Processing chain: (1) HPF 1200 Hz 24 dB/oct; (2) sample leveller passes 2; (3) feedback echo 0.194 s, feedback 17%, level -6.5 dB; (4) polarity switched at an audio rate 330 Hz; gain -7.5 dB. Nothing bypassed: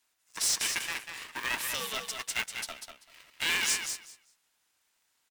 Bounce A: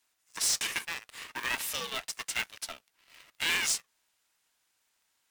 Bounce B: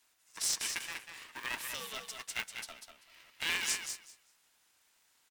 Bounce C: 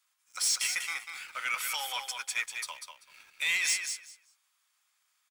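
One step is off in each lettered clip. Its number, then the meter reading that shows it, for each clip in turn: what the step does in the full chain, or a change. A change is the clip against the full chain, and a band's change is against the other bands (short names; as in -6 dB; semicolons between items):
3, crest factor change -1.5 dB; 2, crest factor change +4.5 dB; 4, 500 Hz band -8.5 dB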